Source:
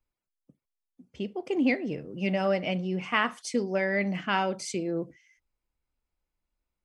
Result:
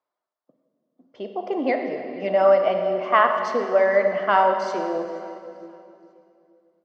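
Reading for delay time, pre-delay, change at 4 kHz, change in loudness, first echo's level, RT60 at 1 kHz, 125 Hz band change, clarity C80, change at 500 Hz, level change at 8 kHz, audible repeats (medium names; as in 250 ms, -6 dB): 469 ms, 32 ms, -1.5 dB, +8.0 dB, -21.5 dB, 2.6 s, no reading, 6.5 dB, +11.0 dB, no reading, 2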